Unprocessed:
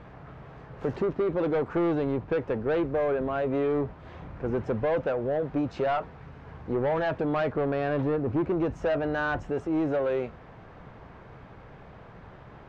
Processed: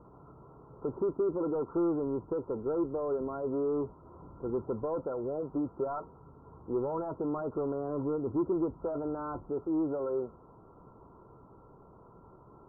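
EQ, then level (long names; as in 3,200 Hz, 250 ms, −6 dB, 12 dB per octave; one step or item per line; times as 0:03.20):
Chebyshev low-pass with heavy ripple 1,400 Hz, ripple 9 dB
−2.0 dB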